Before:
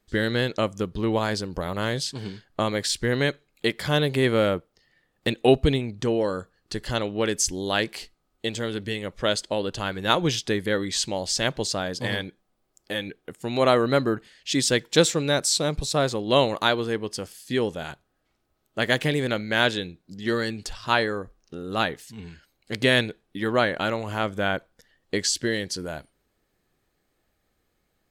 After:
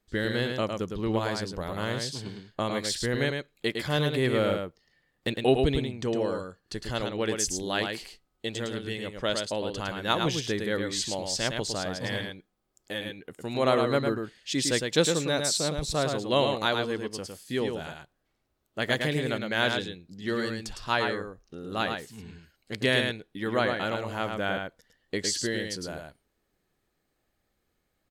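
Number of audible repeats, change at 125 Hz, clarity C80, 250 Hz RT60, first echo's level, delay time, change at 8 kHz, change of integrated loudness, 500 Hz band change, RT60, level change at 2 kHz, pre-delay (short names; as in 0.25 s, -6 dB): 1, -3.5 dB, none, none, -5.0 dB, 0.108 s, -4.0 dB, -4.0 dB, -4.0 dB, none, -4.0 dB, none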